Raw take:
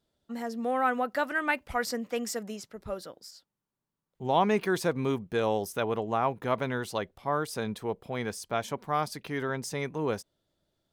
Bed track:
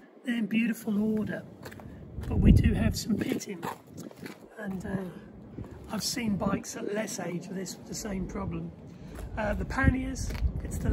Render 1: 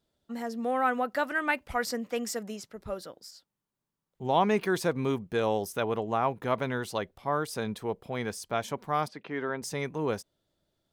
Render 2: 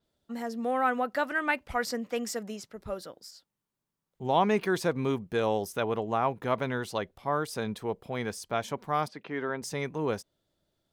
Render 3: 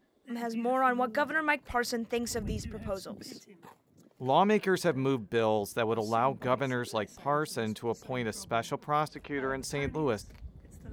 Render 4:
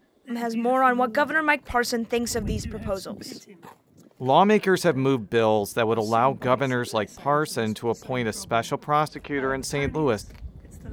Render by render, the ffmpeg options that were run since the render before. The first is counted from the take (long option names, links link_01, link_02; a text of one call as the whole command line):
ffmpeg -i in.wav -filter_complex "[0:a]asplit=3[link_01][link_02][link_03];[link_01]afade=type=out:start_time=9.07:duration=0.02[link_04];[link_02]highpass=200,lowpass=2600,afade=type=in:start_time=9.07:duration=0.02,afade=type=out:start_time=9.61:duration=0.02[link_05];[link_03]afade=type=in:start_time=9.61:duration=0.02[link_06];[link_04][link_05][link_06]amix=inputs=3:normalize=0" out.wav
ffmpeg -i in.wav -af "adynamicequalizer=threshold=0.00316:dfrequency=7300:dqfactor=0.7:tfrequency=7300:tqfactor=0.7:attack=5:release=100:ratio=0.375:range=2:mode=cutabove:tftype=highshelf" out.wav
ffmpeg -i in.wav -i bed.wav -filter_complex "[1:a]volume=-17dB[link_01];[0:a][link_01]amix=inputs=2:normalize=0" out.wav
ffmpeg -i in.wav -af "volume=7dB" out.wav